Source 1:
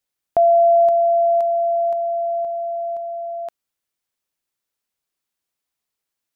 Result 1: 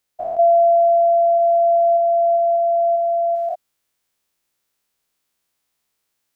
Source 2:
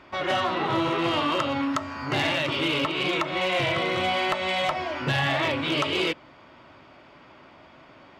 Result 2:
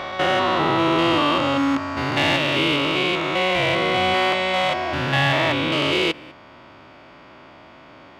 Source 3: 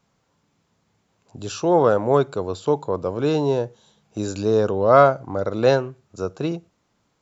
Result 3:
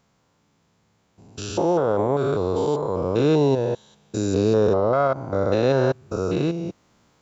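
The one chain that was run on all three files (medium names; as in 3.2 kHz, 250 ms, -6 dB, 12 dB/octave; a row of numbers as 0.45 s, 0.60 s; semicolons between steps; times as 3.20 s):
spectrogram pixelated in time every 200 ms; peak limiter -15.5 dBFS; gain riding within 5 dB 2 s; peak normalisation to -9 dBFS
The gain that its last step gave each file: +5.0 dB, +7.0 dB, +4.5 dB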